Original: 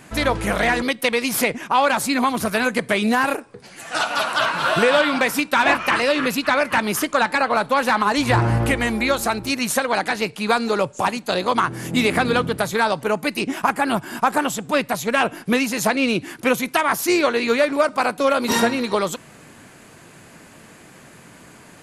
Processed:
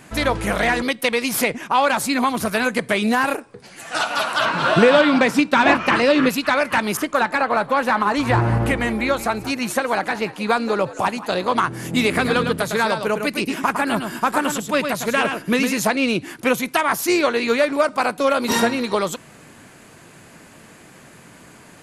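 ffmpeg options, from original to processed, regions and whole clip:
-filter_complex "[0:a]asettb=1/sr,asplit=3[a][b][c];[a]atrim=end=4.454[d];[b]atrim=start=4.45:end=6.29,asetpts=PTS-STARTPTS,afade=t=in:d=0.004:c=qsin,afade=t=out:st=1.836:d=0.004:c=qsin,lowpass=7.5k,equalizer=f=210:w=0.48:g=7.5[e];[c]atrim=start=6.286[f];[d][e]acrossfade=d=0.004:c1=hsin:c2=qsin[g];[g][f]acrossfade=d=0.004:c1=qsin:c2=hsin,asettb=1/sr,asplit=3[h][i][j];[h]atrim=end=6.974[k];[i]atrim=start=6.97:end=11.57,asetpts=PTS-STARTPTS,afade=t=in:d=0.004:c=qsin,afade=t=out:st=4.596:d=0.004:c=qsin,asplit=4[l][m][n][o];[m]adelay=179,afreqshift=80,volume=-16dB[p];[n]adelay=358,afreqshift=160,volume=-25.4dB[q];[o]adelay=537,afreqshift=240,volume=-34.7dB[r];[l][p][q][r]amix=inputs=4:normalize=0,atrim=end_sample=202860,adynamicequalizer=threshold=0.0178:dfrequency=2700:dqfactor=0.7:tfrequency=2700:tqfactor=0.7:attack=5:release=100:ratio=0.375:range=3.5:mode=cutabove:tftype=highshelf[s];[j]atrim=start=11.566[t];[k][s]acrossfade=d=0.004:c1=hsin:c2=qsin[u];[u][t]acrossfade=d=0.004:c1=qsin:c2=hsin,asettb=1/sr,asplit=3[v][w][x];[v]atrim=end=12.084[y];[w]atrim=start=12.08:end=15.82,asetpts=PTS-STARTPTS,afade=t=in:d=0.004:c=qsin,afade=t=out:st=3.736:d=0.004:c=qsin,equalizer=f=780:w=4.3:g=-5,aecho=1:1:107:0.473,atrim=end_sample=164934[z];[x]atrim=start=15.816[aa];[y][z]acrossfade=d=0.004:c1=hsin:c2=qsin[ab];[ab][aa]acrossfade=d=0.004:c1=qsin:c2=hsin"

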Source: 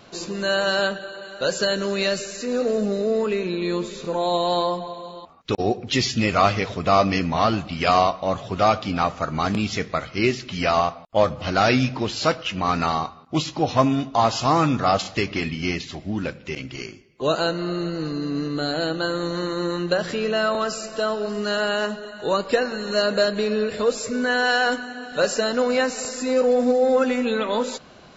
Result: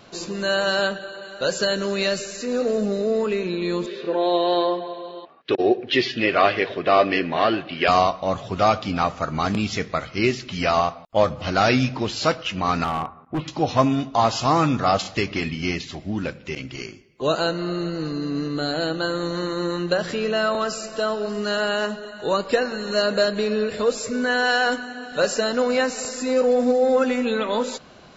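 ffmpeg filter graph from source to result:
-filter_complex "[0:a]asettb=1/sr,asplit=3[a][b][c];[a]atrim=end=3.864[d];[b]atrim=start=3.86:end=7.88,asetpts=PTS-STARTPTS,afade=t=in:d=0.004:c=qsin,afade=t=out:st=4.016:d=0.004:c=qsin,highpass=200,equalizer=f=200:t=q:w=4:g=-7,equalizer=f=370:t=q:w=4:g=8,equalizer=f=590:t=q:w=4:g=3,equalizer=f=920:t=q:w=4:g=-4,equalizer=f=1.7k:t=q:w=4:g=8,equalizer=f=2.9k:t=q:w=4:g=4,lowpass=f=4.2k:w=0.5412,lowpass=f=4.2k:w=1.3066,bandreject=f=1.3k:w=13[e];[c]atrim=start=7.876[f];[d][e]acrossfade=d=0.004:c1=hsin:c2=qsin[g];[g][f]acrossfade=d=0.004:c1=qsin:c2=hsin,asettb=1/sr,asplit=3[h][i][j];[h]atrim=end=12.844[k];[i]atrim=start=12.84:end=13.48,asetpts=PTS-STARTPTS,afade=t=in:d=0.004:c=qsin,afade=t=out:st=0.636:d=0.004:c=qsin,lowpass=f=2.2k:w=0.5412,lowpass=f=2.2k:w=1.3066,asoftclip=type=hard:threshold=-20.5dB[l];[j]atrim=start=13.476[m];[k][l]acrossfade=d=0.004:c1=hsin:c2=qsin[n];[n][m]acrossfade=d=0.004:c1=qsin:c2=hsin"

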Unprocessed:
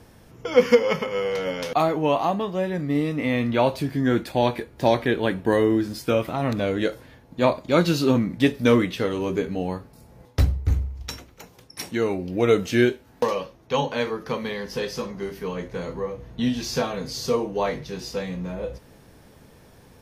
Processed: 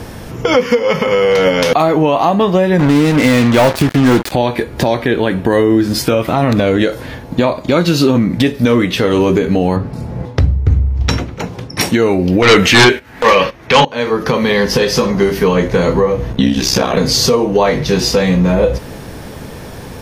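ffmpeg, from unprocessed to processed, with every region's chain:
-filter_complex "[0:a]asettb=1/sr,asplit=3[a][b][c];[a]atrim=end=2.794[d];[b]atrim=start=2.79:end=4.32,asetpts=PTS-STARTPTS,afade=t=in:d=0.004:c=qsin,afade=t=out:st=1.526:d=0.004:c=qsin,asoftclip=type=hard:threshold=-18dB,acrusher=bits=4:mix=0:aa=0.5[e];[c]atrim=start=4.316[f];[d][e]acrossfade=d=0.004:c1=hsin:c2=qsin[g];[g][f]acrossfade=d=0.004:c1=qsin:c2=hsin,asettb=1/sr,asplit=3[h][i][j];[h]atrim=end=9.764[k];[i]atrim=start=9.76:end=11.81,asetpts=PTS-STARTPTS,afade=t=in:d=0.004:c=qsin,afade=t=out:st=2.046:d=0.004:c=qsin,highpass=110,aemphasis=mode=reproduction:type=bsi[l];[j]atrim=start=11.806[m];[k][l]acrossfade=d=0.004:c1=hsin:c2=qsin[n];[n][m]acrossfade=d=0.004:c1=qsin:c2=hsin,asettb=1/sr,asplit=3[o][p][q];[o]atrim=end=12.424[r];[p]atrim=start=12.42:end=13.85,asetpts=PTS-STARTPTS,afade=t=in:d=0.004:c=qsin,afade=t=out:st=1.426:d=0.004:c=qsin,agate=range=-14dB:threshold=-44dB:ratio=16:release=100:detection=peak,equalizer=f=2k:w=1:g=12.5,aeval=exprs='1*sin(PI/2*4.47*val(0)/1)':c=same[s];[q]atrim=start=13.846[t];[r][s]acrossfade=d=0.004:c1=hsin:c2=qsin[u];[u][t]acrossfade=d=0.004:c1=qsin:c2=hsin,asettb=1/sr,asplit=3[v][w][x];[v]atrim=end=16.324[y];[w]atrim=start=16.32:end=16.97,asetpts=PTS-STARTPTS,afade=t=in:d=0.004:c=qsin,afade=t=out:st=0.646:d=0.004:c=qsin,bandreject=f=4.3k:w=15,aeval=exprs='val(0)*sin(2*PI*32*n/s)':c=same[z];[x]atrim=start=16.966[aa];[y][z]acrossfade=d=0.004:c1=hsin:c2=qsin[ab];[ab][aa]acrossfade=d=0.004:c1=qsin:c2=hsin,equalizer=f=13k:w=0.44:g=-2.5,acompressor=threshold=-29dB:ratio=6,alimiter=level_in=22.5dB:limit=-1dB:release=50:level=0:latency=1,volume=-1dB"

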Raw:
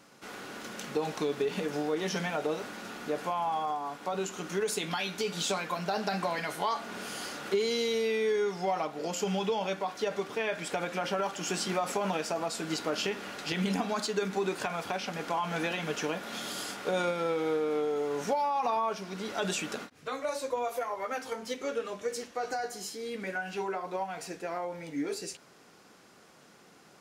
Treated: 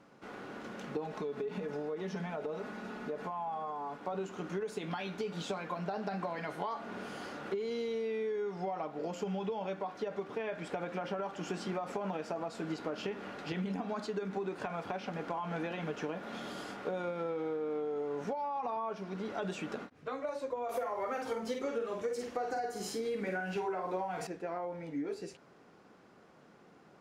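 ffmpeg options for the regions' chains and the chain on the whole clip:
-filter_complex "[0:a]asettb=1/sr,asplit=3[a][b][c];[a]atrim=end=1.064[d];[b]atrim=start=1.06:end=4,asetpts=PTS-STARTPTS,afade=t=in:d=0.004:c=qsin,afade=t=out:st=2.936:d=0.004:c=qsin,bandreject=f=3.1k:w=30,aecho=1:1:4.7:0.47,atrim=end_sample=129654,acompressor=threshold=-34dB:ratio=2.5:attack=3.2:release=140:knee=1:detection=peak[e];[c]atrim=start=3.996[f];[d][e]acrossfade=d=0.004:c1=hsin:c2=qsin[g];[g][f]acrossfade=d=0.004:c1=qsin:c2=hsin,asettb=1/sr,asplit=3[h][i][j];[h]atrim=end=20.694[k];[i]atrim=start=20.69:end=24.27,asetpts=PTS-STARTPTS,afade=t=in:d=0.004:c=qsin,afade=t=out:st=3.576:d=0.004:c=qsin,acontrast=81,highshelf=f=6.9k:g=11,asplit=2[l][m];[m]adelay=49,volume=-4.5dB[n];[l][n]amix=inputs=2:normalize=0,atrim=end_sample=157878[o];[j]atrim=start=24.266[p];[k][o]acrossfade=d=0.004:c1=hsin:c2=qsin[q];[q][p]acrossfade=d=0.004:c1=qsin:c2=hsin,lowpass=f=1.1k:p=1,acompressor=threshold=-33dB:ratio=6"

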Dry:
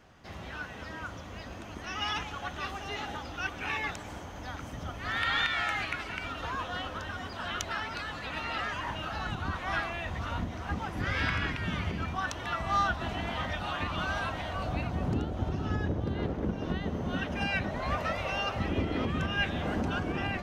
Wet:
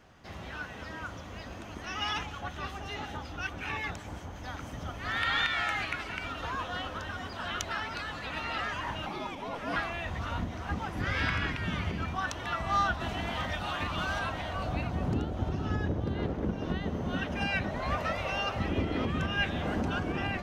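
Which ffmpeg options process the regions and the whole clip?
-filter_complex "[0:a]asettb=1/sr,asplit=3[a][b][c];[a]atrim=end=2.264[d];[b]atrim=start=2.26:end=4.44,asetpts=PTS-STARTPTS,afade=t=in:d=0.004:c=qsin,afade=t=out:st=2.176:d=0.004:c=qsin,highpass=44,lowshelf=f=180:g=7,acrossover=split=1400[e][f];[e]aeval=exprs='val(0)*(1-0.5/2+0.5/2*cos(2*PI*5.4*n/s))':c=same[g];[f]aeval=exprs='val(0)*(1-0.5/2-0.5/2*cos(2*PI*5.4*n/s))':c=same[h];[g][h]amix=inputs=2:normalize=0[i];[c]atrim=start=4.436[j];[d][i]acrossfade=d=0.004:c1=hsin:c2=qsin[k];[k][j]acrossfade=d=0.004:c1=qsin:c2=hsin,asettb=1/sr,asplit=3[l][m][n];[l]atrim=end=9.064[o];[m]atrim=start=9.06:end=9.76,asetpts=PTS-STARTPTS,afade=t=in:d=0.004:c=qsin,afade=t=out:st=0.696:d=0.004:c=qsin,highpass=410,afreqshift=-490[p];[n]atrim=start=9.756[q];[o][p]acrossfade=d=0.004:c1=hsin:c2=qsin[r];[r][q]acrossfade=d=0.004:c1=qsin:c2=hsin,asettb=1/sr,asplit=3[s][t][u];[s]atrim=end=13.004[v];[t]atrim=start=13:end=14.19,asetpts=PTS-STARTPTS,afade=t=in:d=0.004:c=qsin,afade=t=out:st=1.186:d=0.004:c=qsin,highshelf=f=5.3k:g=4.5,aeval=exprs='clip(val(0),-1,0.0422)':c=same[w];[u]atrim=start=14.186[x];[v][w]acrossfade=d=0.004:c1=hsin:c2=qsin[y];[y][x]acrossfade=d=0.004:c1=qsin:c2=hsin"

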